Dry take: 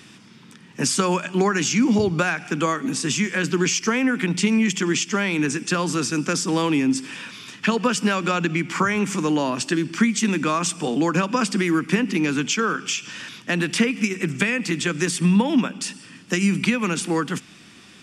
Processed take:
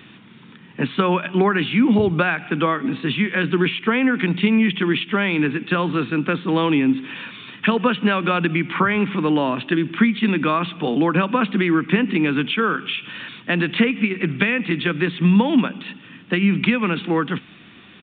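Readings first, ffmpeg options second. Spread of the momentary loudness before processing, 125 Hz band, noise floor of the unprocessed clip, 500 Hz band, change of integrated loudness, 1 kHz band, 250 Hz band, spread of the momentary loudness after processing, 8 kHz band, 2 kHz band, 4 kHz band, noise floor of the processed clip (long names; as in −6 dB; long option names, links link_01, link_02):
6 LU, +2.5 dB, −47 dBFS, +2.5 dB, +2.0 dB, +2.5 dB, +2.5 dB, 7 LU, below −40 dB, +2.5 dB, 0.0 dB, −45 dBFS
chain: -af "aresample=8000,aresample=44100,volume=2.5dB"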